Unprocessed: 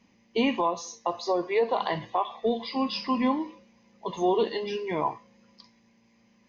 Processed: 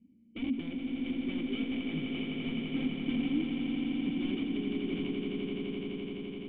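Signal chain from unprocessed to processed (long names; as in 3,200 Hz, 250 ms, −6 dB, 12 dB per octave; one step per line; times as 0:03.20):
tilt shelving filter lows +8.5 dB, about 750 Hz
downward compressor 6 to 1, threshold −21 dBFS, peak gain reduction 6.5 dB
wrap-around overflow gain 20.5 dB
formant resonators in series i
on a send: echo that builds up and dies away 85 ms, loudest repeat 8, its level −7 dB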